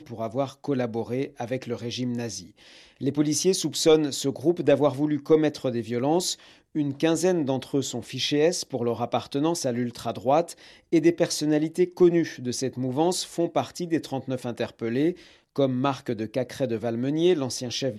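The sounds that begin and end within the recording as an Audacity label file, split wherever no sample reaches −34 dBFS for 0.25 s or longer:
3.010000	6.340000	sound
6.750000	10.520000	sound
10.930000	15.130000	sound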